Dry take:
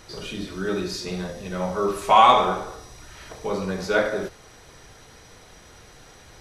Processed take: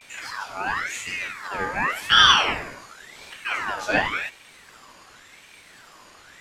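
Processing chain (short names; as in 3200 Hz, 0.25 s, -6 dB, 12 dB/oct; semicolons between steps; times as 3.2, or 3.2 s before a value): vibrato 0.91 Hz 95 cents; ring modulator with a swept carrier 1700 Hz, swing 40%, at 0.91 Hz; gain +2 dB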